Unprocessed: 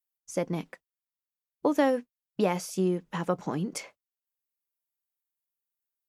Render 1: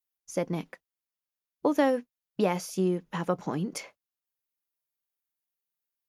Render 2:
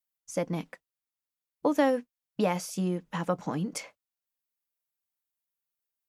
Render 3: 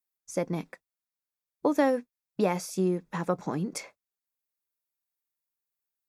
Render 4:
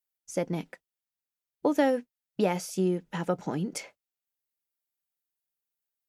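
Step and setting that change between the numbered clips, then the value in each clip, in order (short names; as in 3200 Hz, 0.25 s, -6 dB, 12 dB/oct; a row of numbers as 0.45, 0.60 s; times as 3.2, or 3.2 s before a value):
notch, frequency: 8000, 380, 3000, 1100 Hz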